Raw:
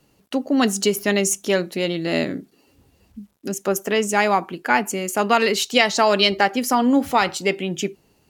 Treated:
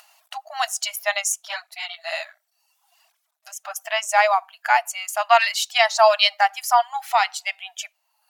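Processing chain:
reverb reduction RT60 0.85 s
harmonic and percussive parts rebalanced harmonic +7 dB
upward compression, threshold −40 dBFS
linear-phase brick-wall high-pass 610 Hz
0:01.32–0:03.81: through-zero flanger with one copy inverted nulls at 1.4 Hz, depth 7.4 ms
level −1.5 dB

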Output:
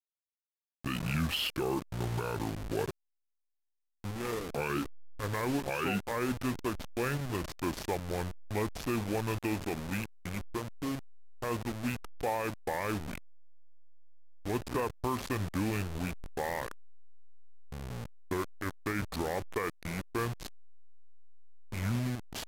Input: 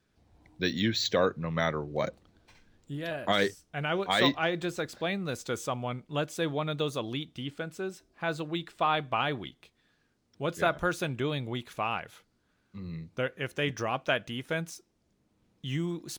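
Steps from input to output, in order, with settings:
hold until the input has moved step −33 dBFS
speed change −28%
brickwall limiter −22.5 dBFS, peak gain reduction 10 dB

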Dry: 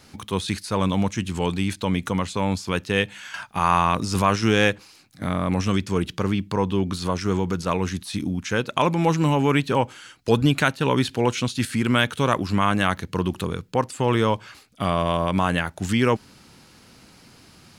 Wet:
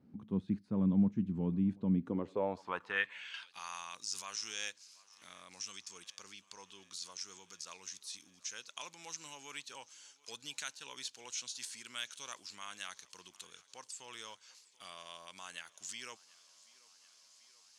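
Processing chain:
feedback echo with a high-pass in the loop 734 ms, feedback 76%, high-pass 240 Hz, level −23 dB
band-pass filter sweep 210 Hz → 6,300 Hz, 0:01.94–0:03.71
level −4 dB

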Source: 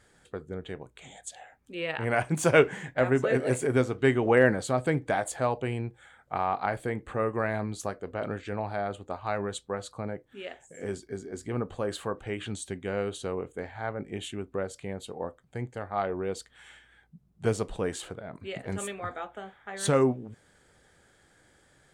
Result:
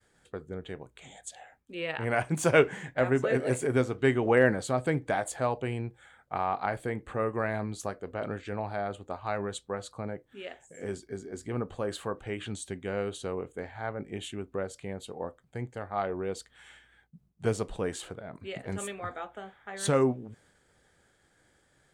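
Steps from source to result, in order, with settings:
downward expander −58 dBFS
level −1.5 dB

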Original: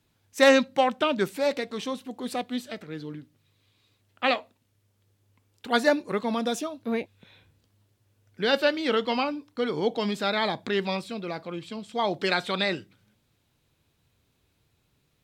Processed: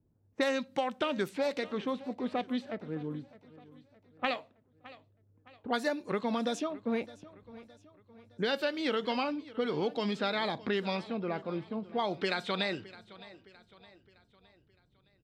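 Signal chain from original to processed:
low-pass that shuts in the quiet parts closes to 450 Hz, open at −21.5 dBFS
downward compressor 6 to 1, threshold −28 dBFS, peak gain reduction 14 dB
repeating echo 614 ms, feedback 46%, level −19 dB

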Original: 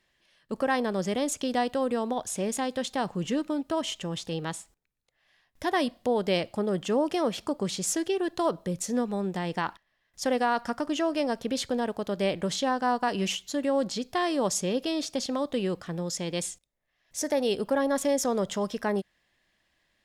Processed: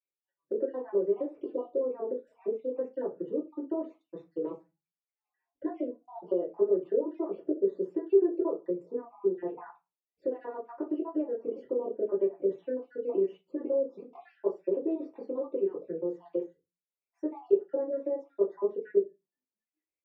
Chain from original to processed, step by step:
time-frequency cells dropped at random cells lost 51%
noise reduction from a noise print of the clip's start 25 dB
downward compressor, threshold −32 dBFS, peak gain reduction 10.5 dB
four-pole ladder band-pass 440 Hz, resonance 65%
convolution reverb RT60 0.25 s, pre-delay 3 ms, DRR −8 dB
dynamic equaliser 390 Hz, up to +5 dB, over −40 dBFS, Q 0.99
level −1.5 dB

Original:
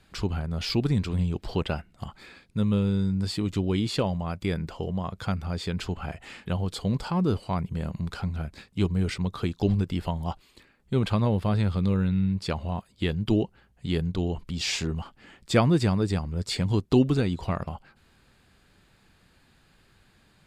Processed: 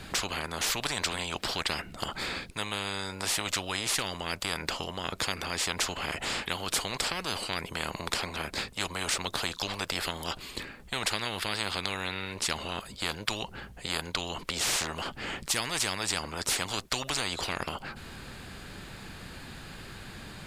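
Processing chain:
every bin compressed towards the loudest bin 10 to 1

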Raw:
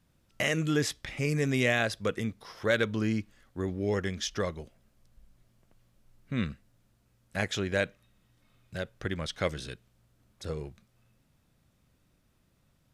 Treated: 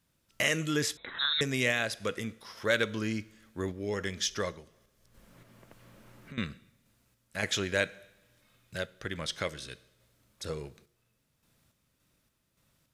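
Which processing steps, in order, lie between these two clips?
spectral tilt +1.5 dB per octave
notch filter 750 Hz, Q 12
coupled-rooms reverb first 0.83 s, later 2.8 s, from −24 dB, DRR 17 dB
0:00.97–0:01.41: voice inversion scrambler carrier 3,900 Hz
sample-and-hold tremolo
0:04.52–0:06.38: multiband upward and downward compressor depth 100%
level +1.5 dB

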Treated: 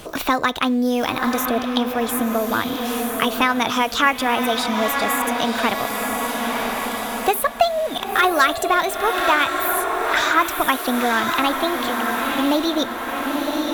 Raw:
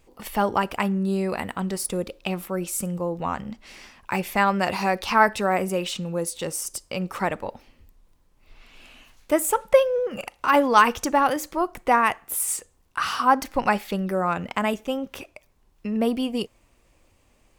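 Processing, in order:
feedback delay with all-pass diffusion 1,254 ms, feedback 52%, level −7 dB
dynamic equaliser 2,900 Hz, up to +5 dB, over −46 dBFS, Q 3.4
in parallel at −11.5 dB: floating-point word with a short mantissa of 2 bits
on the sum: speed change +28%
multiband upward and downward compressor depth 70%
level +1 dB

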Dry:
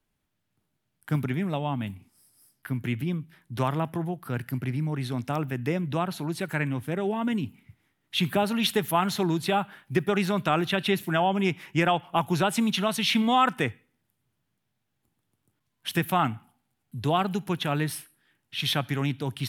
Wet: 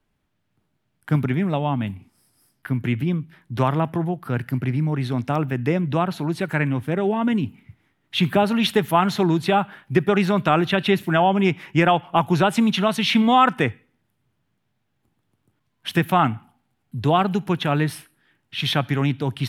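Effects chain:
high-shelf EQ 5,000 Hz −11 dB
level +6.5 dB

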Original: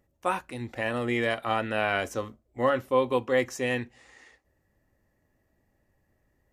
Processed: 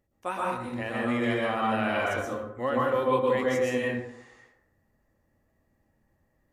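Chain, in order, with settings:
dense smooth reverb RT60 0.82 s, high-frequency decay 0.45×, pre-delay 105 ms, DRR −4 dB
level −5.5 dB

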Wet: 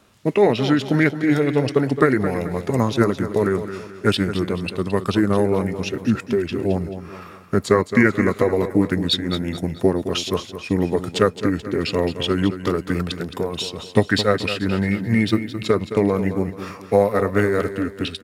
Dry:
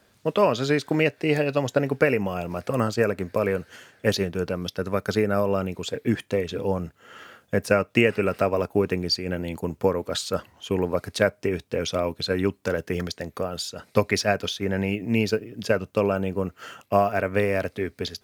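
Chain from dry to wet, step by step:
formants moved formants −4 semitones
on a send: repeating echo 217 ms, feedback 40%, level −11 dB
on the sum: level +4.5 dB

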